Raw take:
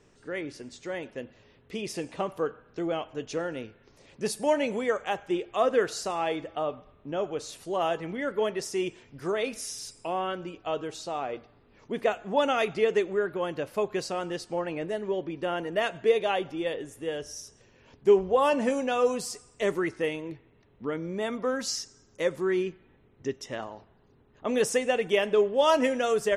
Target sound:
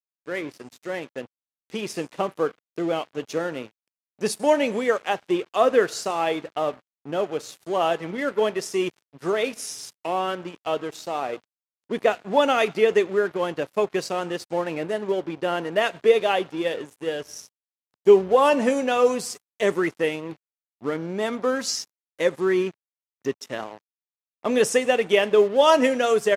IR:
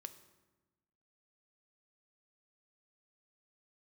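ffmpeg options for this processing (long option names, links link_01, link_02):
-af "aeval=exprs='sgn(val(0))*max(abs(val(0))-0.00531,0)':channel_layout=same,aresample=32000,aresample=44100,highpass=120,volume=6dB"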